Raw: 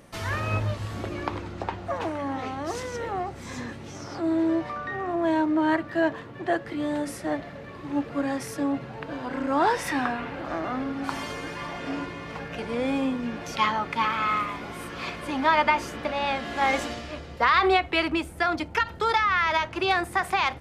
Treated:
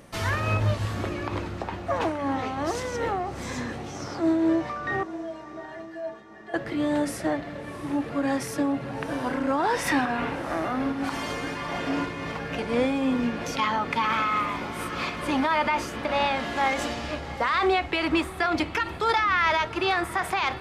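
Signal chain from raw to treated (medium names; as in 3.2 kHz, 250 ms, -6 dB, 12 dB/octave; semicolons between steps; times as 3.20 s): peak limiter -19.5 dBFS, peak gain reduction 10 dB; 5.03–6.54 s: inharmonic resonator 210 Hz, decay 0.26 s, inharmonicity 0.008; on a send: echo that smears into a reverb 694 ms, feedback 51%, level -15.5 dB; on the sum: random flutter of the level, depth 50%; trim +5.5 dB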